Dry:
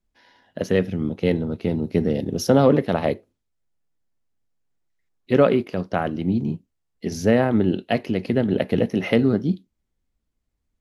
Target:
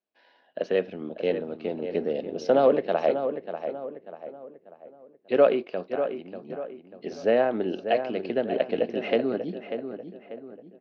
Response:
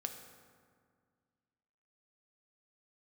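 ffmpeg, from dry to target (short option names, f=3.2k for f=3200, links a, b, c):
-filter_complex "[0:a]asettb=1/sr,asplit=3[a][b][c];[a]atrim=end=5.884[d];[b]atrim=start=5.88:end=6.5,asetpts=PTS-STARTPTS,afade=t=in:d=0.004:c=qsin,afade=t=out:st=0.616:d=0.004:c=qsin,acompressor=threshold=-30dB:ratio=6[e];[c]atrim=start=6.496[f];[d][e]acrossfade=d=0.004:c1=hsin:c2=qsin[g];[g][f]acrossfade=d=0.004:c1=qsin:c2=hsin,highpass=470,equalizer=f=640:t=q:w=4:g=3,equalizer=f=940:t=q:w=4:g=-6,equalizer=f=1.3k:t=q:w=4:g=-5,equalizer=f=2k:t=q:w=4:g=-8,equalizer=f=3.4k:t=q:w=4:g=-6,lowpass=f=3.8k:w=0.5412,lowpass=f=3.8k:w=1.3066,asplit=2[h][i];[i]adelay=591,lowpass=f=2.4k:p=1,volume=-8.5dB,asplit=2[j][k];[k]adelay=591,lowpass=f=2.4k:p=1,volume=0.42,asplit=2[l][m];[m]adelay=591,lowpass=f=2.4k:p=1,volume=0.42,asplit=2[n][o];[o]adelay=591,lowpass=f=2.4k:p=1,volume=0.42,asplit=2[p][q];[q]adelay=591,lowpass=f=2.4k:p=1,volume=0.42[r];[h][j][l][n][p][r]amix=inputs=6:normalize=0"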